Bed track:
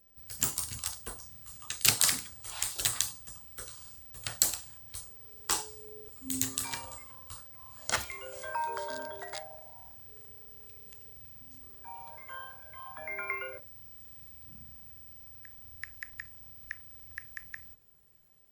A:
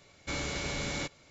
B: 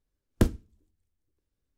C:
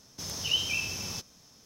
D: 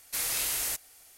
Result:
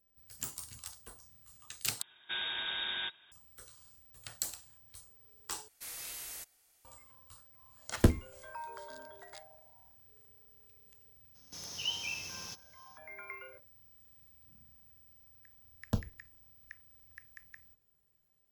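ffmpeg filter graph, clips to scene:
ffmpeg -i bed.wav -i cue0.wav -i cue1.wav -i cue2.wav -i cue3.wav -filter_complex "[2:a]asplit=2[link_01][link_02];[0:a]volume=-10.5dB[link_03];[1:a]lowpass=frequency=3200:width_type=q:width=0.5098,lowpass=frequency=3200:width_type=q:width=0.6013,lowpass=frequency=3200:width_type=q:width=0.9,lowpass=frequency=3200:width_type=q:width=2.563,afreqshift=-3800[link_04];[link_01]asplit=2[link_05][link_06];[link_06]adelay=12,volume=-7dB[link_07];[link_05][link_07]amix=inputs=2:normalize=0[link_08];[3:a]lowshelf=frequency=440:gain=-6[link_09];[link_02]asplit=2[link_10][link_11];[link_11]afreqshift=-1.4[link_12];[link_10][link_12]amix=inputs=2:normalize=1[link_13];[link_03]asplit=3[link_14][link_15][link_16];[link_14]atrim=end=2.024[link_17];[link_04]atrim=end=1.3,asetpts=PTS-STARTPTS,volume=-1.5dB[link_18];[link_15]atrim=start=3.316:end=5.684[link_19];[4:a]atrim=end=1.17,asetpts=PTS-STARTPTS,volume=-13.5dB[link_20];[link_16]atrim=start=6.846[link_21];[link_08]atrim=end=1.77,asetpts=PTS-STARTPTS,volume=-1.5dB,afade=type=in:duration=0.004:curve=hsin,afade=type=out:start_time=1.766:duration=0.004:curve=hsin,adelay=7630[link_22];[link_09]atrim=end=1.65,asetpts=PTS-STARTPTS,volume=-7.5dB,afade=type=in:duration=0.02,afade=type=out:start_time=1.63:duration=0.02,adelay=11340[link_23];[link_13]atrim=end=1.77,asetpts=PTS-STARTPTS,volume=-6dB,afade=type=in:duration=0.004:curve=hsin,afade=type=out:start_time=1.766:duration=0.004:curve=hsin,adelay=15520[link_24];[link_17][link_18]acrossfade=duration=0.004:curve1=hsin:curve2=hsin[link_25];[link_25][link_19]acrossfade=duration=0.004:curve1=hsin:curve2=hsin[link_26];[link_26][link_20]acrossfade=duration=0.004:curve1=hsin:curve2=hsin[link_27];[link_27][link_21]acrossfade=duration=0.004:curve1=hsin:curve2=hsin[link_28];[link_28][link_22][link_23][link_24]amix=inputs=4:normalize=0" out.wav

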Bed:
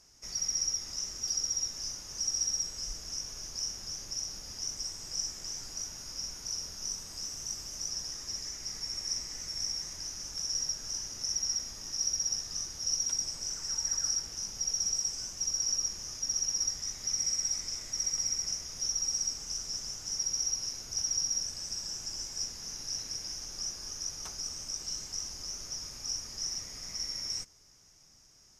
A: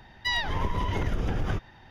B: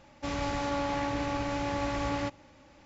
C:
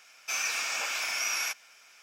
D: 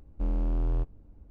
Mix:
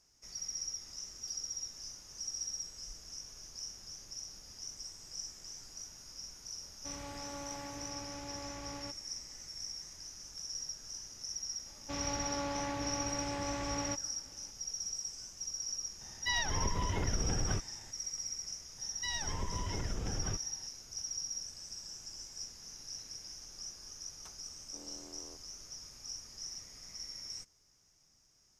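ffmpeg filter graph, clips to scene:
ffmpeg -i bed.wav -i cue0.wav -i cue1.wav -i cue2.wav -i cue3.wav -filter_complex "[2:a]asplit=2[link_01][link_02];[1:a]asplit=2[link_03][link_04];[0:a]volume=-8.5dB[link_05];[link_04]acrossover=split=380|3000[link_06][link_07][link_08];[link_07]acompressor=threshold=-31dB:ratio=6:attack=3.2:release=140:knee=2.83:detection=peak[link_09];[link_06][link_09][link_08]amix=inputs=3:normalize=0[link_10];[4:a]highpass=frequency=270:width=0.5412,highpass=frequency=270:width=1.3066[link_11];[link_01]atrim=end=2.85,asetpts=PTS-STARTPTS,volume=-14dB,afade=type=in:duration=0.004:curve=hsin,afade=type=out:start_time=2.846:duration=0.004:curve=hsin,adelay=6620[link_12];[link_02]atrim=end=2.85,asetpts=PTS-STARTPTS,volume=-6.5dB,afade=type=in:duration=0.004:curve=hsin,afade=type=out:start_time=2.846:duration=0.004:curve=hsin,adelay=11660[link_13];[link_03]atrim=end=1.9,asetpts=PTS-STARTPTS,volume=-6dB,afade=type=in:duration=0.004:curve=hsin,afade=type=out:start_time=1.896:duration=0.004:curve=hsin,adelay=16010[link_14];[link_10]atrim=end=1.9,asetpts=PTS-STARTPTS,volume=-9.5dB,afade=type=in:duration=0.004:curve=hsin,afade=type=out:start_time=1.896:duration=0.004:curve=hsin,adelay=18780[link_15];[link_11]atrim=end=1.3,asetpts=PTS-STARTPTS,volume=-13dB,afade=type=in:duration=0.004:curve=hsin,afade=type=out:start_time=1.296:duration=0.004:curve=hsin,adelay=24530[link_16];[link_05][link_12][link_13][link_14][link_15][link_16]amix=inputs=6:normalize=0" out.wav

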